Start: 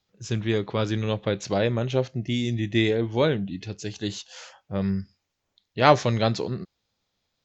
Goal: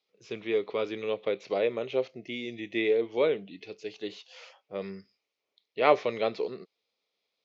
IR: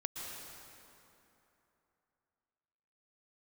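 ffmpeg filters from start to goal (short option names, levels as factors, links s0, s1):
-filter_complex "[0:a]acrossover=split=3100[s0][s1];[s1]acompressor=threshold=0.00447:ratio=4:attack=1:release=60[s2];[s0][s2]amix=inputs=2:normalize=0,highpass=400,equalizer=f=440:t=q:w=4:g=7,equalizer=f=870:t=q:w=4:g=-5,equalizer=f=1600:t=q:w=4:g=-10,equalizer=f=2300:t=q:w=4:g=6,lowpass=f=5500:w=0.5412,lowpass=f=5500:w=1.3066,volume=0.668"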